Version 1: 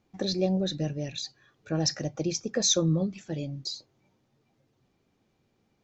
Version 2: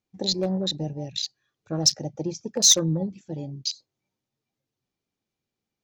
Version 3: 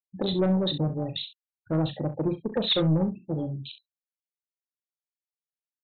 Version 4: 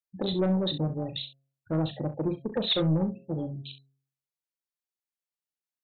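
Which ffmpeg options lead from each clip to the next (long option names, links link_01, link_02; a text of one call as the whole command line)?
ffmpeg -i in.wav -af "afwtdn=0.0158,asoftclip=type=hard:threshold=-16.5dB,highshelf=frequency=2600:gain=11" out.wav
ffmpeg -i in.wav -af "afftfilt=real='re*gte(hypot(re,im),0.00631)':imag='im*gte(hypot(re,im),0.00631)':win_size=1024:overlap=0.75,aresample=8000,asoftclip=type=tanh:threshold=-23dB,aresample=44100,aecho=1:1:38|66:0.299|0.188,volume=4.5dB" out.wav
ffmpeg -i in.wav -af "bandreject=frequency=135.9:width_type=h:width=4,bandreject=frequency=271.8:width_type=h:width=4,bandreject=frequency=407.7:width_type=h:width=4,bandreject=frequency=543.6:width_type=h:width=4,bandreject=frequency=679.5:width_type=h:width=4,volume=-2dB" out.wav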